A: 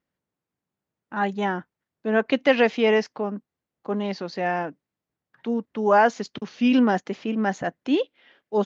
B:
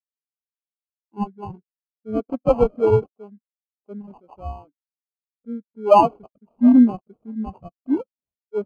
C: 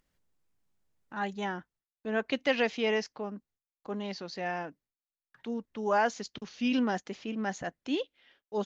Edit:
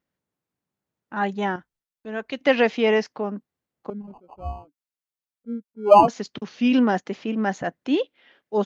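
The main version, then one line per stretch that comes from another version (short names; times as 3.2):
A
1.56–2.41 from C
3.9–6.08 from B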